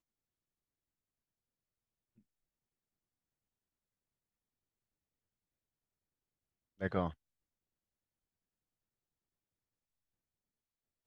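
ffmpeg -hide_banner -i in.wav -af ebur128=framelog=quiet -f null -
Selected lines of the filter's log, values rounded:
Integrated loudness:
  I:         -38.5 LUFS
  Threshold: -49.2 LUFS
Loudness range:
  LRA:         1.6 LU
  Threshold: -65.8 LUFS
  LRA low:   -47.1 LUFS
  LRA high:  -45.5 LUFS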